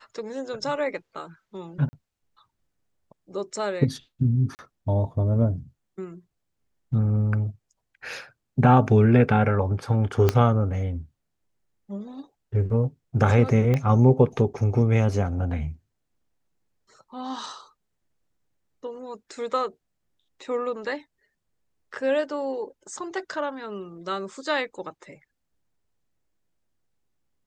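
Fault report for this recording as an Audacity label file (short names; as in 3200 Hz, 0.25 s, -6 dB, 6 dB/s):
1.890000	1.930000	gap 40 ms
4.550000	4.590000	gap 39 ms
10.290000	10.290000	pop -7 dBFS
13.740000	13.740000	pop -13 dBFS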